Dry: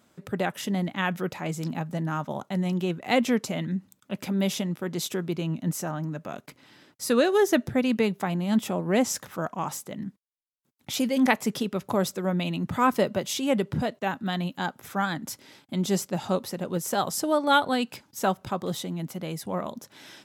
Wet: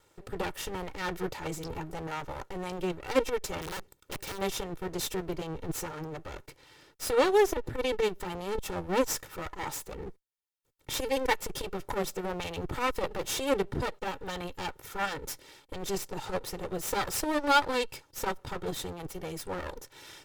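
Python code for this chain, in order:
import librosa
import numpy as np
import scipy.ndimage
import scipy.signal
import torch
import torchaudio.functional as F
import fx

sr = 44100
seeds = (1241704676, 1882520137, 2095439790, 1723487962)

y = fx.lower_of_two(x, sr, delay_ms=2.2)
y = fx.overflow_wrap(y, sr, gain_db=32.0, at=(3.61, 4.37), fade=0.02)
y = fx.transformer_sat(y, sr, knee_hz=200.0)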